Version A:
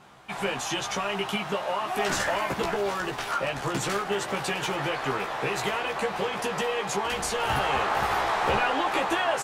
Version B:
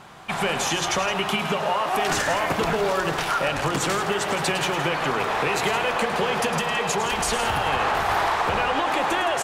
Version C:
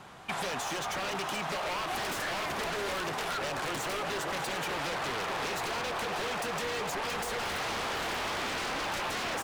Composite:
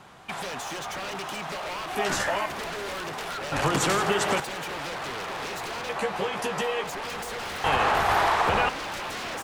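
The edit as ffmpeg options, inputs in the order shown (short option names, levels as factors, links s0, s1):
-filter_complex "[0:a]asplit=2[s0][s1];[1:a]asplit=2[s2][s3];[2:a]asplit=5[s4][s5][s6][s7][s8];[s4]atrim=end=1.952[s9];[s0]atrim=start=1.948:end=2.462[s10];[s5]atrim=start=2.458:end=3.522[s11];[s2]atrim=start=3.518:end=4.402[s12];[s6]atrim=start=4.398:end=5.892[s13];[s1]atrim=start=5.888:end=6.842[s14];[s7]atrim=start=6.838:end=7.642[s15];[s3]atrim=start=7.638:end=8.692[s16];[s8]atrim=start=8.688[s17];[s9][s10]acrossfade=d=0.004:c1=hsin:c2=hsin[s18];[s18][s11]acrossfade=d=0.004:c1=hsin:c2=hsin[s19];[s19][s12]acrossfade=d=0.004:c1=hsin:c2=hsin[s20];[s20][s13]acrossfade=d=0.004:c1=hsin:c2=hsin[s21];[s21][s14]acrossfade=d=0.004:c1=hsin:c2=hsin[s22];[s22][s15]acrossfade=d=0.004:c1=hsin:c2=hsin[s23];[s23][s16]acrossfade=d=0.004:c1=hsin:c2=hsin[s24];[s24][s17]acrossfade=d=0.004:c1=hsin:c2=hsin"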